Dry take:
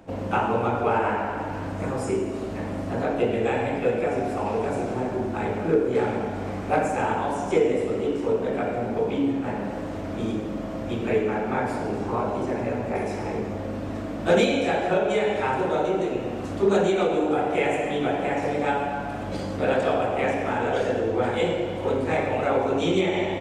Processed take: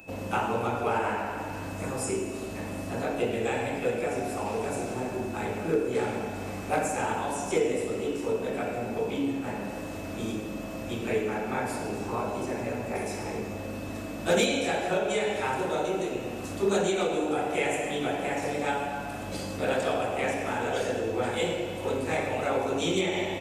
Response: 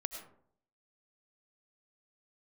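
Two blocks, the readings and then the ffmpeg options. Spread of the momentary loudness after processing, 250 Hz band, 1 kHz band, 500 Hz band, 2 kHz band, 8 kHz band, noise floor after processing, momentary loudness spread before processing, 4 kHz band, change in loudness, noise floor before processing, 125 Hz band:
8 LU, -5.5 dB, -4.5 dB, -5.0 dB, -2.5 dB, +6.5 dB, -37 dBFS, 8 LU, 0.0 dB, -4.5 dB, -32 dBFS, -5.5 dB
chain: -af "aemphasis=mode=production:type=75fm,aeval=exprs='val(0)+0.00631*sin(2*PI*2600*n/s)':c=same,volume=-4.5dB"

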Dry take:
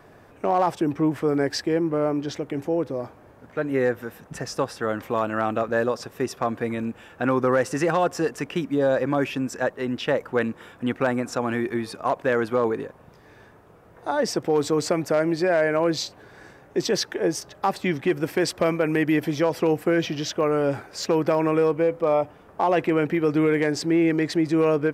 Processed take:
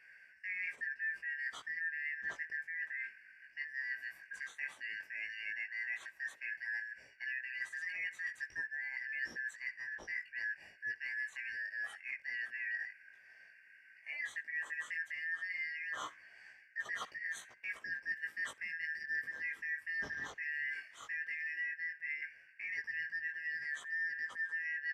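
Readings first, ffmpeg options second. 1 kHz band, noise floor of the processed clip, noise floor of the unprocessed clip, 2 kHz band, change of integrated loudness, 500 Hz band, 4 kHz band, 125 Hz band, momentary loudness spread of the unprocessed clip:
-29.0 dB, -62 dBFS, -51 dBFS, -3.5 dB, -15.5 dB, under -40 dB, -19.5 dB, under -40 dB, 9 LU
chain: -af "afftfilt=real='real(if(lt(b,272),68*(eq(floor(b/68),0)*2+eq(floor(b/68),1)*0+eq(floor(b/68),2)*3+eq(floor(b/68),3)*1)+mod(b,68),b),0)':imag='imag(if(lt(b,272),68*(eq(floor(b/68),0)*2+eq(floor(b/68),1)*0+eq(floor(b/68),2)*3+eq(floor(b/68),3)*1)+mod(b,68),b),0)':win_size=2048:overlap=0.75,equalizer=f=1.4k:w=2:g=5.5,aecho=1:1:65|130:0.0708|0.0142,areverse,acompressor=threshold=-26dB:ratio=8,areverse,highpass=f=55:p=1,flanger=delay=16:depth=5.6:speed=0.12,lowpass=9.6k,equalizer=f=4.4k:w=1.7:g=-15,volume=-7dB"

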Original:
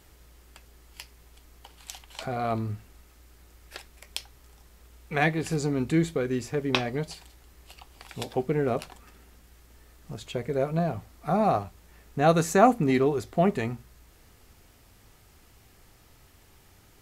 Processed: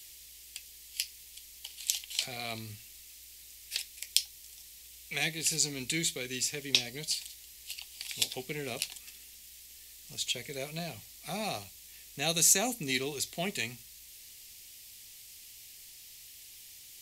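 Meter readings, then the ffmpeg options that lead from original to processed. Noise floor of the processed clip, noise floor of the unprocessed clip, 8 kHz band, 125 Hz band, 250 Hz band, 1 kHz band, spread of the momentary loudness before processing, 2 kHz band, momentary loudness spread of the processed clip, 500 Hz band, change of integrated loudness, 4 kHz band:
-52 dBFS, -57 dBFS, +12.0 dB, -13.5 dB, -13.5 dB, -15.5 dB, 21 LU, -3.0 dB, 20 LU, -14.0 dB, -5.0 dB, +7.5 dB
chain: -filter_complex "[0:a]acrossover=split=190|710|4300[a][b][c][d];[c]alimiter=limit=-20dB:level=0:latency=1:release=448[e];[a][b][e][d]amix=inputs=4:normalize=0,aexciter=amount=11.9:drive=6.3:freq=2.1k,volume=-13.5dB"

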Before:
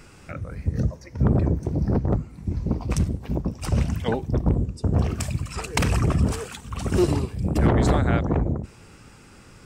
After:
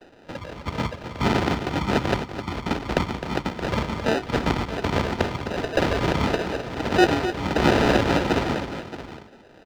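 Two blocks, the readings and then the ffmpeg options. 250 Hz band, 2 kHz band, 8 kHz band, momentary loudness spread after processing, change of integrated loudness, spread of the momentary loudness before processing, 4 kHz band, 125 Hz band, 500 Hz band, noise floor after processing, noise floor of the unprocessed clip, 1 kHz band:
+0.5 dB, +8.5 dB, -3.5 dB, 13 LU, +0.5 dB, 10 LU, +8.5 dB, -6.0 dB, +4.5 dB, -50 dBFS, -48 dBFS, +7.0 dB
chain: -filter_complex "[0:a]agate=range=-33dB:threshold=-42dB:ratio=3:detection=peak,aemphasis=mode=production:type=75kf,acrusher=samples=40:mix=1:aa=0.000001,acrossover=split=230 5300:gain=0.224 1 0.1[a][b][c];[a][b][c]amix=inputs=3:normalize=0,asplit=2[d][e];[e]aecho=0:1:260|623:0.299|0.224[f];[d][f]amix=inputs=2:normalize=0,volume=4dB"

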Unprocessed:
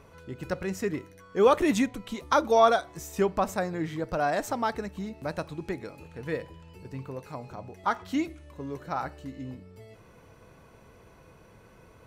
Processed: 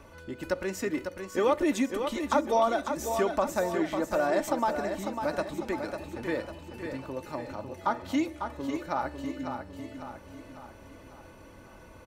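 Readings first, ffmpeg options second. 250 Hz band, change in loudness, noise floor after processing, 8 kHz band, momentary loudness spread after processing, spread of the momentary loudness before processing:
+0.5 dB, -2.0 dB, -51 dBFS, +0.5 dB, 17 LU, 19 LU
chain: -filter_complex "[0:a]aecho=1:1:3.4:0.5,acrossover=split=270|940[a][b][c];[a]acompressor=threshold=-45dB:ratio=4[d];[b]acompressor=threshold=-26dB:ratio=4[e];[c]acompressor=threshold=-37dB:ratio=4[f];[d][e][f]amix=inputs=3:normalize=0,aecho=1:1:549|1098|1647|2196|2745|3294:0.447|0.223|0.112|0.0558|0.0279|0.014,volume=2dB"

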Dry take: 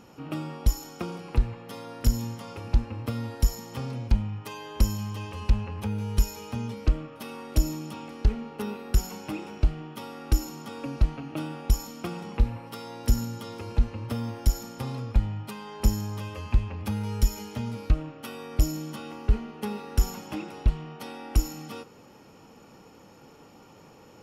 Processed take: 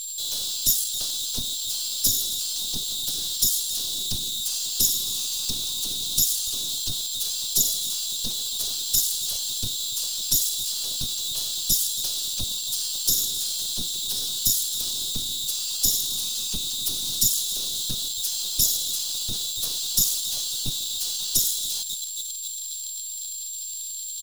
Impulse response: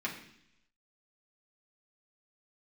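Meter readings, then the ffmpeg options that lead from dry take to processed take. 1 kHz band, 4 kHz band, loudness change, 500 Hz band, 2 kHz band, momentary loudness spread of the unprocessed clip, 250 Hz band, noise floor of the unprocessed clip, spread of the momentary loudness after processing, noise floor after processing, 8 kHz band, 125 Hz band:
-13.5 dB, +20.0 dB, +7.0 dB, -12.0 dB, -5.5 dB, 10 LU, -11.5 dB, -52 dBFS, 6 LU, -34 dBFS, +20.0 dB, -14.5 dB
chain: -filter_complex "[0:a]asplit=7[a][b][c][d][e][f][g];[b]adelay=268,afreqshift=-70,volume=-17dB[h];[c]adelay=536,afreqshift=-140,volume=-21.6dB[i];[d]adelay=804,afreqshift=-210,volume=-26.2dB[j];[e]adelay=1072,afreqshift=-280,volume=-30.7dB[k];[f]adelay=1340,afreqshift=-350,volume=-35.3dB[l];[g]adelay=1608,afreqshift=-420,volume=-39.9dB[m];[a][h][i][j][k][l][m]amix=inputs=7:normalize=0,afftfilt=real='hypot(re,im)*cos(2*PI*random(0))':imag='hypot(re,im)*sin(2*PI*random(1))':win_size=512:overlap=0.75,aeval=exprs='val(0)+0.00562*sin(2*PI*3700*n/s)':c=same,aeval=exprs='abs(val(0))':c=same,adynamicequalizer=threshold=0.002:dfrequency=570:dqfactor=1.6:tfrequency=570:tqfactor=1.6:attack=5:release=100:ratio=0.375:range=3:mode=cutabove:tftype=bell,asplit=2[n][o];[o]acrusher=bits=4:dc=4:mix=0:aa=0.000001,volume=-7dB[p];[n][p]amix=inputs=2:normalize=0,aexciter=amount=15:drive=8.2:freq=3.4k,volume=-8.5dB"

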